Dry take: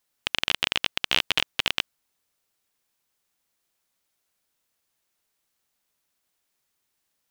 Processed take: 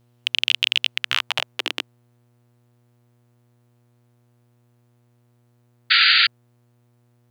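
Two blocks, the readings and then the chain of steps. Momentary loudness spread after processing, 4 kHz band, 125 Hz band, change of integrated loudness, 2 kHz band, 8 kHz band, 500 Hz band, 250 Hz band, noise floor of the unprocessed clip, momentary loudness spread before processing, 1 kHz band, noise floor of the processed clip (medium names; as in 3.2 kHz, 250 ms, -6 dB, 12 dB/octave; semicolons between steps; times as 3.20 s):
13 LU, +7.5 dB, -5.0 dB, +6.5 dB, +8.5 dB, -0.5 dB, -2.0 dB, -4.0 dB, -77 dBFS, 6 LU, +6.0 dB, -61 dBFS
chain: high-pass sweep 2.8 kHz -> 300 Hz, 0.86–1.69 s; mains buzz 120 Hz, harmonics 39, -60 dBFS -8 dB/octave; painted sound noise, 5.90–6.27 s, 1.3–4.8 kHz -14 dBFS; trim -1 dB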